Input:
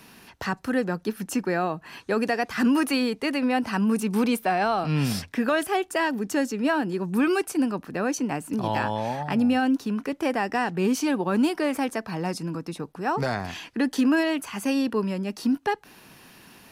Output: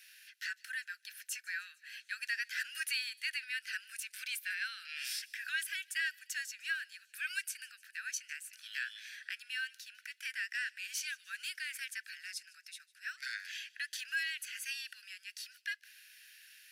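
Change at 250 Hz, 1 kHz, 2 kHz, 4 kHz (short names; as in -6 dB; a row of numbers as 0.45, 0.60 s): under -40 dB, -31.5 dB, -5.5 dB, -5.0 dB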